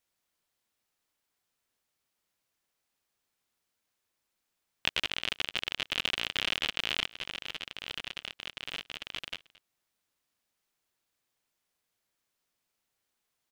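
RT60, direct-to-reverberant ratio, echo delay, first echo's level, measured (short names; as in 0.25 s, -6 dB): none, none, 0.222 s, -22.0 dB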